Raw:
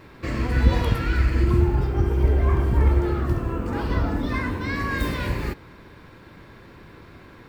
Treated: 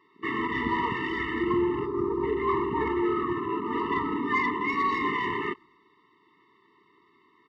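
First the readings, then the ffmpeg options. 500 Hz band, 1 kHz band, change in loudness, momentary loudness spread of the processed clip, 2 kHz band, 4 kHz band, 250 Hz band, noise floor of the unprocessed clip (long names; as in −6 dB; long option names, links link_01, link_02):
0.0 dB, +4.5 dB, −4.5 dB, 4 LU, +0.5 dB, −2.5 dB, −2.0 dB, −47 dBFS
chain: -filter_complex "[0:a]highpass=460,lowpass=3500,asplit=4[link_01][link_02][link_03][link_04];[link_02]adelay=127,afreqshift=-38,volume=-17.5dB[link_05];[link_03]adelay=254,afreqshift=-76,volume=-25.2dB[link_06];[link_04]adelay=381,afreqshift=-114,volume=-33dB[link_07];[link_01][link_05][link_06][link_07]amix=inputs=4:normalize=0,afwtdn=0.0112,asoftclip=type=tanh:threshold=-22dB,afftfilt=real='re*eq(mod(floor(b*sr/1024/440),2),0)':imag='im*eq(mod(floor(b*sr/1024/440),2),0)':win_size=1024:overlap=0.75,volume=7.5dB"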